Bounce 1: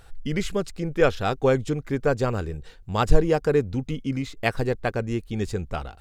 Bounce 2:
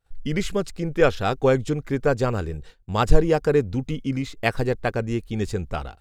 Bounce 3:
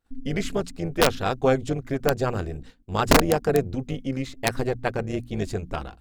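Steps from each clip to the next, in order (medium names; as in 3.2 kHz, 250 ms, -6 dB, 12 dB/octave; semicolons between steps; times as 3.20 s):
expander -36 dBFS; trim +1.5 dB
AM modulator 260 Hz, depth 50%; hum notches 60/120/180/240 Hz; integer overflow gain 9 dB; trim +1 dB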